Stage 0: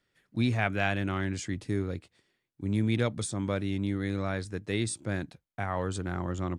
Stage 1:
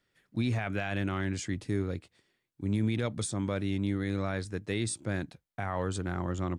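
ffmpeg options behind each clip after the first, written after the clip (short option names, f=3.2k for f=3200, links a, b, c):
-af "alimiter=limit=-20dB:level=0:latency=1:release=35"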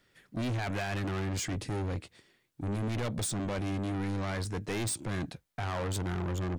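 -af "asoftclip=type=tanh:threshold=-38dB,volume=8dB"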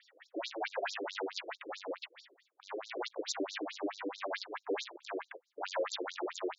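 -af "aeval=exprs='(tanh(89.1*val(0)+0.45)-tanh(0.45))/89.1':c=same,afftfilt=real='re*between(b*sr/1024,400*pow(5300/400,0.5+0.5*sin(2*PI*4.6*pts/sr))/1.41,400*pow(5300/400,0.5+0.5*sin(2*PI*4.6*pts/sr))*1.41)':imag='im*between(b*sr/1024,400*pow(5300/400,0.5+0.5*sin(2*PI*4.6*pts/sr))/1.41,400*pow(5300/400,0.5+0.5*sin(2*PI*4.6*pts/sr))*1.41)':win_size=1024:overlap=0.75,volume=13dB"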